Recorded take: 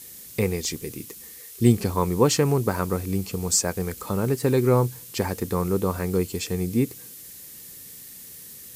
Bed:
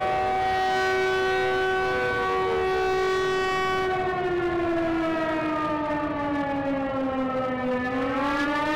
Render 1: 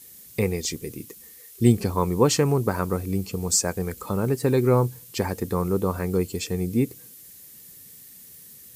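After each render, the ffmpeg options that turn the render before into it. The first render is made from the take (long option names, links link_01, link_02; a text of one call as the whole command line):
ffmpeg -i in.wav -af "afftdn=noise_reduction=6:noise_floor=-43" out.wav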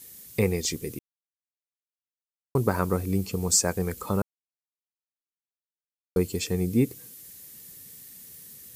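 ffmpeg -i in.wav -filter_complex "[0:a]asplit=5[link_01][link_02][link_03][link_04][link_05];[link_01]atrim=end=0.99,asetpts=PTS-STARTPTS,afade=type=out:start_time=0.986:duration=0.004:curve=hsin[link_06];[link_02]atrim=start=0.99:end=2.55,asetpts=PTS-STARTPTS,volume=0[link_07];[link_03]atrim=start=2.55:end=4.22,asetpts=PTS-STARTPTS,afade=type=in:duration=0.004:curve=hsin,afade=type=out:start_time=1.666:duration=0.004:curve=hsin[link_08];[link_04]atrim=start=4.22:end=6.16,asetpts=PTS-STARTPTS,volume=0[link_09];[link_05]atrim=start=6.16,asetpts=PTS-STARTPTS,afade=type=in:duration=0.004:curve=hsin[link_10];[link_06][link_07][link_08][link_09][link_10]concat=n=5:v=0:a=1" out.wav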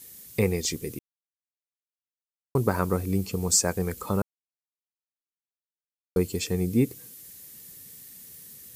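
ffmpeg -i in.wav -af anull out.wav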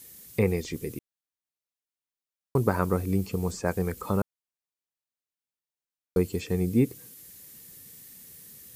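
ffmpeg -i in.wav -filter_complex "[0:a]acrossover=split=2700[link_01][link_02];[link_02]acompressor=threshold=-43dB:ratio=4:attack=1:release=60[link_03];[link_01][link_03]amix=inputs=2:normalize=0" out.wav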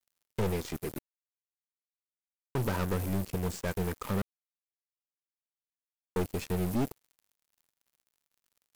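ffmpeg -i in.wav -af "aeval=exprs='(tanh(22.4*val(0)+0.4)-tanh(0.4))/22.4':channel_layout=same,acrusher=bits=5:mix=0:aa=0.5" out.wav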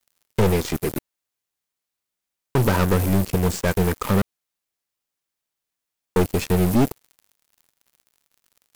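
ffmpeg -i in.wav -af "volume=12dB" out.wav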